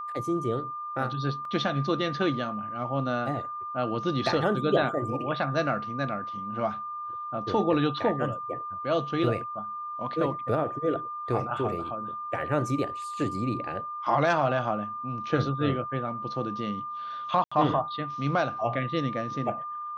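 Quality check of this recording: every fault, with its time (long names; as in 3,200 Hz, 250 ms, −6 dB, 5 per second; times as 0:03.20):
whistle 1,200 Hz −33 dBFS
0:01.45: drop-out 2.4 ms
0:17.44–0:17.52: drop-out 75 ms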